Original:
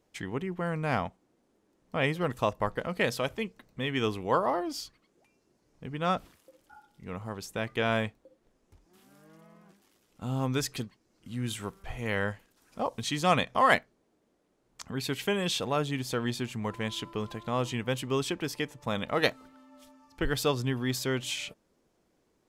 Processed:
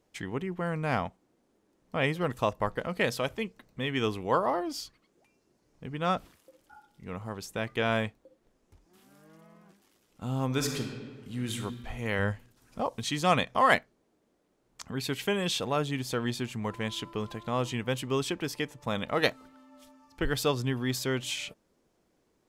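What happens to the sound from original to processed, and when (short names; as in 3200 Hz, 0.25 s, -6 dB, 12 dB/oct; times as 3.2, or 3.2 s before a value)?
10.45–11.53 reverb throw, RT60 1.7 s, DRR 3 dB
12.19–12.81 low shelf 140 Hz +9.5 dB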